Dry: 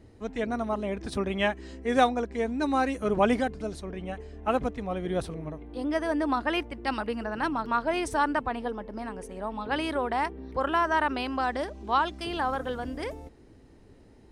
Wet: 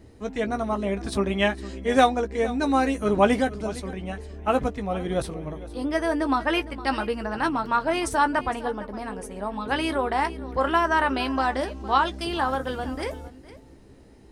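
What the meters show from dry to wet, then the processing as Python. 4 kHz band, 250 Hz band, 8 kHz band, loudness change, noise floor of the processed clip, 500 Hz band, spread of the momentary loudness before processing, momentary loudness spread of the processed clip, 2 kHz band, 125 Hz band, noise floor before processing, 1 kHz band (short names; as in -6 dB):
+4.5 dB, +3.5 dB, +6.5 dB, +4.0 dB, -50 dBFS, +4.0 dB, 12 LU, 12 LU, +4.0 dB, +4.5 dB, -54 dBFS, +3.5 dB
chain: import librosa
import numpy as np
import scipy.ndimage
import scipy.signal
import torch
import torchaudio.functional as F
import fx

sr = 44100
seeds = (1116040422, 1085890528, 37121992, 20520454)

y = fx.high_shelf(x, sr, hz=6400.0, db=5.0)
y = fx.doubler(y, sr, ms=15.0, db=-9)
y = y + 10.0 ** (-17.0 / 20.0) * np.pad(y, (int(460 * sr / 1000.0), 0))[:len(y)]
y = F.gain(torch.from_numpy(y), 3.0).numpy()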